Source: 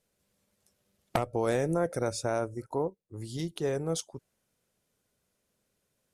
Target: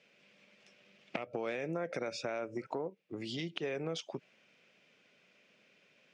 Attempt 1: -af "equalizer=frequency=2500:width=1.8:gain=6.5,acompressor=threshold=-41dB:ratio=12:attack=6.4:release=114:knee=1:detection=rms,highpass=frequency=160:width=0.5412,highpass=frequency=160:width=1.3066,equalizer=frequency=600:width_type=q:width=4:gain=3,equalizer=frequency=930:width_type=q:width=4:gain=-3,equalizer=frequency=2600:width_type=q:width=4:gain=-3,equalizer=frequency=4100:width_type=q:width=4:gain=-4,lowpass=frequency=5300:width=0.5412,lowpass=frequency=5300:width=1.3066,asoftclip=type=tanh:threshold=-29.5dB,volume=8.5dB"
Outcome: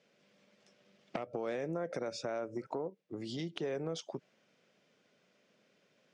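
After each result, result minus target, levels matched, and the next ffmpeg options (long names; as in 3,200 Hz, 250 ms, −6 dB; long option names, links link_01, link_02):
soft clipping: distortion +14 dB; 2,000 Hz band −4.5 dB
-af "equalizer=frequency=2500:width=1.8:gain=6.5,acompressor=threshold=-41dB:ratio=12:attack=6.4:release=114:knee=1:detection=rms,highpass=frequency=160:width=0.5412,highpass=frequency=160:width=1.3066,equalizer=frequency=600:width_type=q:width=4:gain=3,equalizer=frequency=930:width_type=q:width=4:gain=-3,equalizer=frequency=2600:width_type=q:width=4:gain=-3,equalizer=frequency=4100:width_type=q:width=4:gain=-4,lowpass=frequency=5300:width=0.5412,lowpass=frequency=5300:width=1.3066,asoftclip=type=tanh:threshold=-20dB,volume=8.5dB"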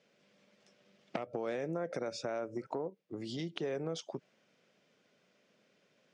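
2,000 Hz band −4.5 dB
-af "equalizer=frequency=2500:width=1.8:gain=18,acompressor=threshold=-41dB:ratio=12:attack=6.4:release=114:knee=1:detection=rms,highpass=frequency=160:width=0.5412,highpass=frequency=160:width=1.3066,equalizer=frequency=600:width_type=q:width=4:gain=3,equalizer=frequency=930:width_type=q:width=4:gain=-3,equalizer=frequency=2600:width_type=q:width=4:gain=-3,equalizer=frequency=4100:width_type=q:width=4:gain=-4,lowpass=frequency=5300:width=0.5412,lowpass=frequency=5300:width=1.3066,asoftclip=type=tanh:threshold=-20dB,volume=8.5dB"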